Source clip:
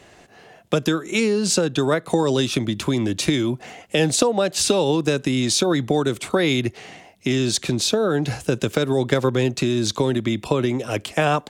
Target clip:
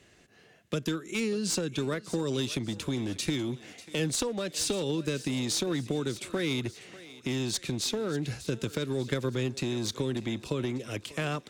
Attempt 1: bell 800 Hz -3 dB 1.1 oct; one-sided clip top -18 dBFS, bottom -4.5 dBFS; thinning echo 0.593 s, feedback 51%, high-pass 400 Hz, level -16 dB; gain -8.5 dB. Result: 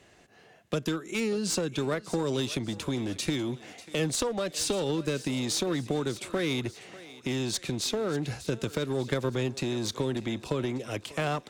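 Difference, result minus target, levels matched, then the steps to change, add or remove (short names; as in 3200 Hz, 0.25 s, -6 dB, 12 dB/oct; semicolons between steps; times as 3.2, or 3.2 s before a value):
1000 Hz band +3.5 dB
change: bell 800 Hz -10.5 dB 1.1 oct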